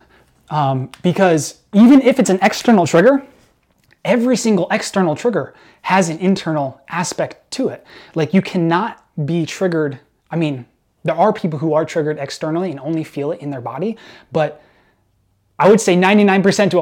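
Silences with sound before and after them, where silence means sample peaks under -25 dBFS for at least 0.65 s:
3.2–4.05
14.5–15.59

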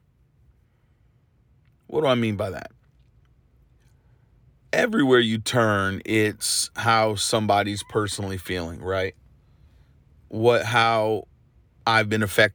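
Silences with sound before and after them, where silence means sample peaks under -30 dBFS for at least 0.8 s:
2.66–4.73
9.09–10.33

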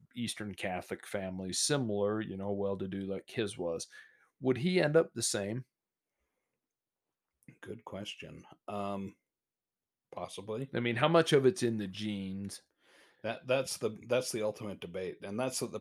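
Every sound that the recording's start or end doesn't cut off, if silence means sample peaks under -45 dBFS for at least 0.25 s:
4.42–5.62
7.49–9.1
10.13–12.57

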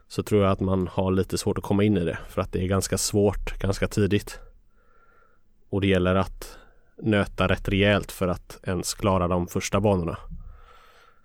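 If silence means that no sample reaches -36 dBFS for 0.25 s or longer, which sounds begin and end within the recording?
5.73–6.54
6.99–10.5

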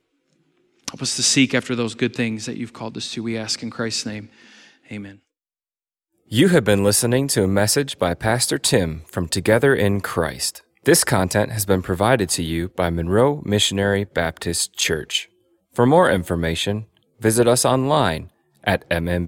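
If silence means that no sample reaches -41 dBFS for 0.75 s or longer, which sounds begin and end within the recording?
0.88–5.15

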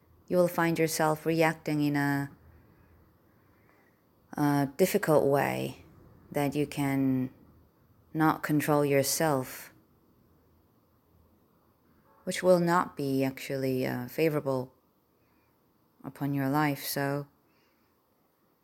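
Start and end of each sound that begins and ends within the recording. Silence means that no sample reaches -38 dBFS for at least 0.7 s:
4.33–7.28
8.15–9.64
12.27–14.65
16.04–17.23

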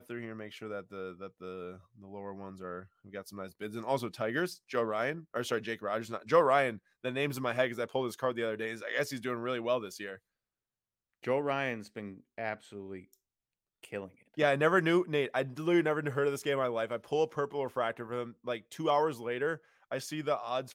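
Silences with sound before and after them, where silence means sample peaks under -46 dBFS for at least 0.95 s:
10.16–11.24

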